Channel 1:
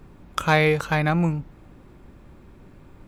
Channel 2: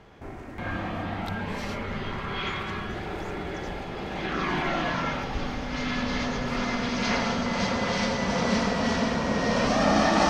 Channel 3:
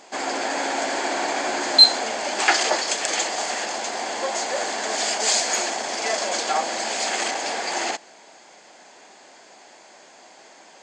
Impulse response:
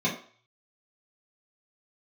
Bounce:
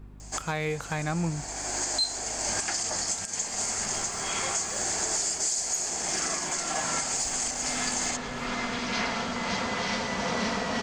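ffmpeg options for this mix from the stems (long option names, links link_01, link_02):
-filter_complex "[0:a]aeval=exprs='val(0)+0.0112*(sin(2*PI*50*n/s)+sin(2*PI*2*50*n/s)/2+sin(2*PI*3*50*n/s)/3+sin(2*PI*4*50*n/s)/4+sin(2*PI*5*50*n/s)/5)':channel_layout=same,volume=-6dB,asplit=2[link_01][link_02];[1:a]lowshelf=frequency=360:gain=-7.5,adelay=1900,volume=-0.5dB[link_03];[2:a]aexciter=amount=8.3:drive=2:freq=5200,adelay=200,volume=-8dB[link_04];[link_02]apad=whole_len=490700[link_05];[link_04][link_05]sidechaincompress=threshold=-36dB:ratio=10:attack=16:release=609[link_06];[link_01][link_03][link_06]amix=inputs=3:normalize=0,bandreject=frequency=550:width=16,alimiter=limit=-18dB:level=0:latency=1:release=485"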